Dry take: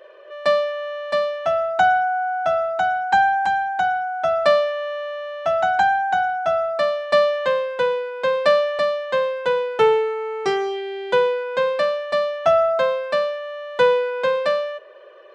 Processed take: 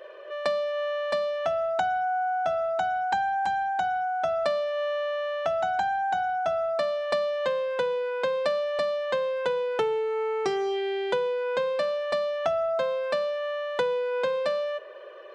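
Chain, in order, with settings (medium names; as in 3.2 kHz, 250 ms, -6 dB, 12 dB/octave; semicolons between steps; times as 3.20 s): dynamic bell 1.6 kHz, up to -5 dB, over -32 dBFS, Q 0.72; compression 6:1, threshold -25 dBFS, peak gain reduction 12 dB; trim +1 dB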